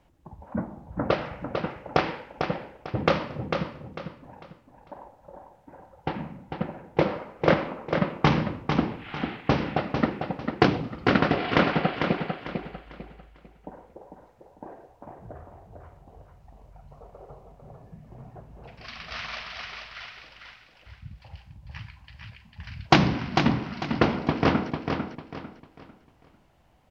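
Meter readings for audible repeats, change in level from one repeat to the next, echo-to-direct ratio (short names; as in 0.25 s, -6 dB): 3, -10.0 dB, -5.5 dB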